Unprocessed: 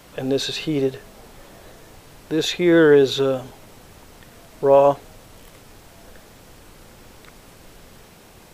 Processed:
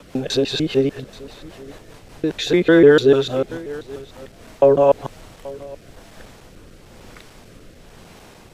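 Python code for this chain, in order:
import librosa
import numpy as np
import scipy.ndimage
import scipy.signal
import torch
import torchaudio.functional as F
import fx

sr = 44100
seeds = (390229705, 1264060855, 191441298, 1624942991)

p1 = fx.local_reverse(x, sr, ms=149.0)
p2 = p1 + fx.echo_single(p1, sr, ms=830, db=-20.5, dry=0)
p3 = fx.rotary_switch(p2, sr, hz=5.0, then_hz=1.0, switch_at_s=3.89)
p4 = fx.high_shelf(p3, sr, hz=11000.0, db=-10.5)
y = p4 * 10.0 ** (4.5 / 20.0)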